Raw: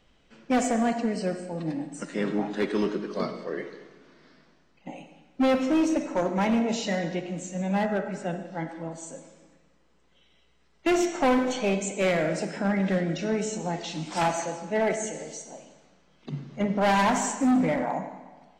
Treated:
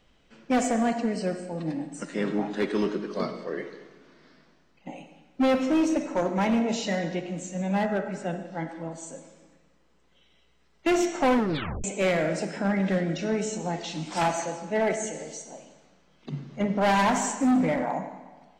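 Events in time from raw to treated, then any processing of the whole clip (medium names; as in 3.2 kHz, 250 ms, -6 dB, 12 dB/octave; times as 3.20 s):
11.35 s: tape stop 0.49 s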